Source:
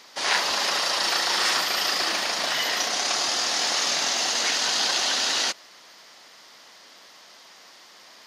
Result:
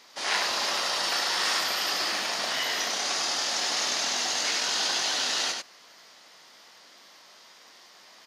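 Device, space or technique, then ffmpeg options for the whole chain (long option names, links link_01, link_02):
slapback doubling: -filter_complex "[0:a]asplit=3[link_01][link_02][link_03];[link_02]adelay=20,volume=-6.5dB[link_04];[link_03]adelay=97,volume=-4dB[link_05];[link_01][link_04][link_05]amix=inputs=3:normalize=0,volume=-5.5dB"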